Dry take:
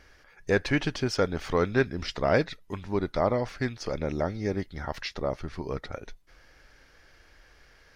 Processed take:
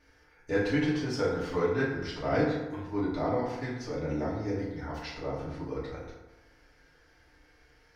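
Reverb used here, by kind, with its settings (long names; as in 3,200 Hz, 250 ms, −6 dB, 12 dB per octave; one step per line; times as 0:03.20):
feedback delay network reverb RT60 1.1 s, low-frequency decay 1×, high-frequency decay 0.5×, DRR −8.5 dB
level −13 dB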